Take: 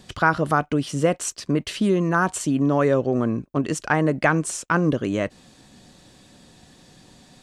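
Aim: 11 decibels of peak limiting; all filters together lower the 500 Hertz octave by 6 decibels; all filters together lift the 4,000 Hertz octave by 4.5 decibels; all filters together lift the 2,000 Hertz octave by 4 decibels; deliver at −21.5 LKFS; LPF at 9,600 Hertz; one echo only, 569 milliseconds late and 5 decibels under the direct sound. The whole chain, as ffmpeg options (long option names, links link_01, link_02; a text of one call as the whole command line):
ffmpeg -i in.wav -af "lowpass=9600,equalizer=frequency=500:width_type=o:gain=-8,equalizer=frequency=2000:width_type=o:gain=6,equalizer=frequency=4000:width_type=o:gain=4,alimiter=limit=-14dB:level=0:latency=1,aecho=1:1:569:0.562,volume=3dB" out.wav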